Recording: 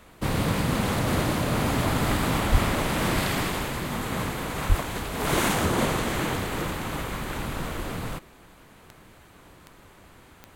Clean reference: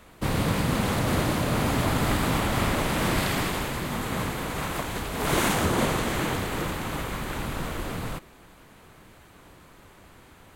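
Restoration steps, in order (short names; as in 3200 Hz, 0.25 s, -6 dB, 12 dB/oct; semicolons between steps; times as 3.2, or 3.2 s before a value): de-click; de-plosive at 2.51/4.68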